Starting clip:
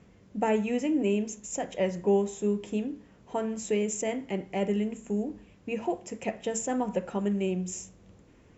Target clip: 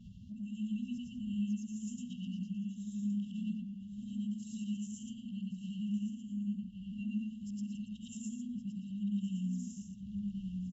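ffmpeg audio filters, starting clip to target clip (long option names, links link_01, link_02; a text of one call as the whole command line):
ffmpeg -i in.wav -filter_complex "[0:a]afftfilt=real='re':imag='-im':win_size=8192:overlap=0.75,afftfilt=real='re*(1-between(b*sr/4096,250,2700))':imag='im*(1-between(b*sr/4096,250,2700))':win_size=4096:overlap=0.75,acompressor=mode=upward:threshold=-37dB:ratio=2.5,atempo=0.8,aemphasis=mode=reproduction:type=75kf,asplit=2[link_01][link_02];[link_02]adelay=1117,lowpass=frequency=2500:poles=1,volume=-4dB,asplit=2[link_03][link_04];[link_04]adelay=1117,lowpass=frequency=2500:poles=1,volume=0.2,asplit=2[link_05][link_06];[link_06]adelay=1117,lowpass=frequency=2500:poles=1,volume=0.2[link_07];[link_01][link_03][link_05][link_07]amix=inputs=4:normalize=0,volume=-1.5dB" out.wav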